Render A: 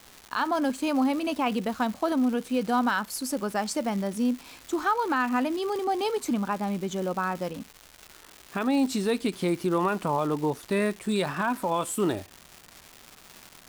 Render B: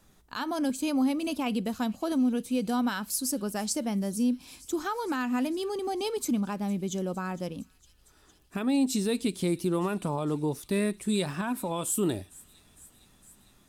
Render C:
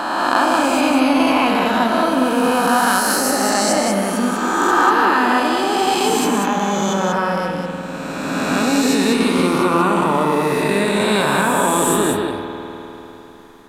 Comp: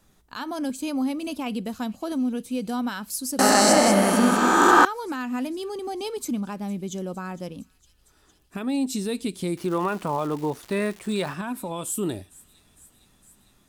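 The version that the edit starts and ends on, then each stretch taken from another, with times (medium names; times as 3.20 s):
B
3.39–4.85 s: from C
9.57–11.34 s: from A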